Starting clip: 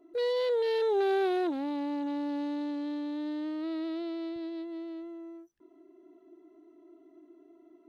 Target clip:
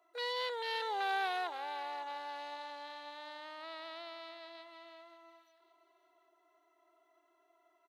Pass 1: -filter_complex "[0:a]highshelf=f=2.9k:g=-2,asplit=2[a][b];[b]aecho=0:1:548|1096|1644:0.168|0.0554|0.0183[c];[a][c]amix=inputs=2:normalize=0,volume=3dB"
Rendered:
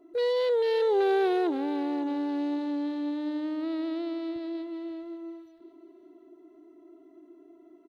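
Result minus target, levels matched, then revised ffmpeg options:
1000 Hz band -8.5 dB
-filter_complex "[0:a]highpass=f=770:w=0.5412,highpass=f=770:w=1.3066,highshelf=f=2.9k:g=-2,asplit=2[a][b];[b]aecho=0:1:548|1096|1644:0.168|0.0554|0.0183[c];[a][c]amix=inputs=2:normalize=0,volume=3dB"

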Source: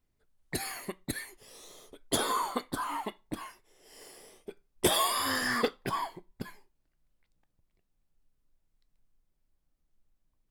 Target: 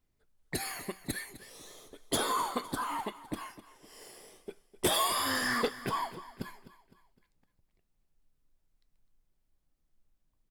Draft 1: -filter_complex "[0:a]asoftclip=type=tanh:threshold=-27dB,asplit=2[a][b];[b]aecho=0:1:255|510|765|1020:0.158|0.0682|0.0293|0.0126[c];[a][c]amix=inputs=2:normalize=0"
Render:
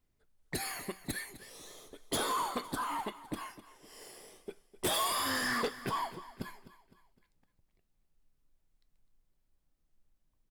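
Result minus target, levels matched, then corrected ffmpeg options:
soft clip: distortion +7 dB
-filter_complex "[0:a]asoftclip=type=tanh:threshold=-19.5dB,asplit=2[a][b];[b]aecho=0:1:255|510|765|1020:0.158|0.0682|0.0293|0.0126[c];[a][c]amix=inputs=2:normalize=0"

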